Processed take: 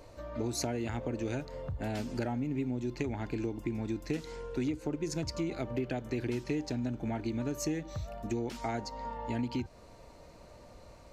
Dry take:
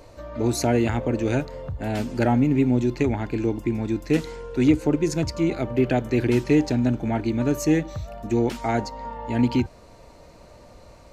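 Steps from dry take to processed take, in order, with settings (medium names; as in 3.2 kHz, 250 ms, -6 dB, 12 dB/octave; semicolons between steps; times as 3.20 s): compression 6:1, threshold -25 dBFS, peak gain reduction 12.5 dB; dynamic bell 5.3 kHz, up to +4 dB, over -53 dBFS, Q 1.2; trim -5.5 dB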